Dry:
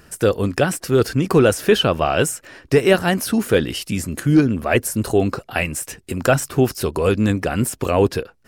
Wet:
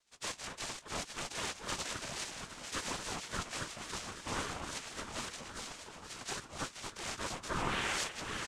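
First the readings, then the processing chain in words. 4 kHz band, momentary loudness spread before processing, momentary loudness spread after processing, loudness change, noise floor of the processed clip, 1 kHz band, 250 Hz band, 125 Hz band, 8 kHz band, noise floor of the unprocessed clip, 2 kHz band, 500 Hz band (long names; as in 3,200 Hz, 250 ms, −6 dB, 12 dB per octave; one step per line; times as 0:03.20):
−12.5 dB, 7 LU, 7 LU, −20.5 dB, −54 dBFS, −15.5 dB, −28.0 dB, −27.0 dB, −12.5 dB, −53 dBFS, −15.5 dB, −29.0 dB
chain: high-pass filter 150 Hz 12 dB per octave
gate on every frequency bin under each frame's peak −30 dB weak
low shelf with overshoot 640 Hz +8 dB, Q 3
in parallel at +2.5 dB: brickwall limiter −26.5 dBFS, peak gain reduction 9.5 dB
on the sum: sound drawn into the spectrogram rise, 0:07.49–0:08.04, 310–3,600 Hz −26 dBFS
half-wave rectification
on a send: delay that swaps between a low-pass and a high-pass 237 ms, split 1,300 Hz, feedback 84%, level −9 dB
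on the sum: soft clipping −25.5 dBFS, distortion −12 dB
double-tracking delay 15 ms −11 dB
cochlear-implant simulation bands 4
ring modulator whose carrier an LFO sweeps 580 Hz, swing 40%, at 3.6 Hz
level +3 dB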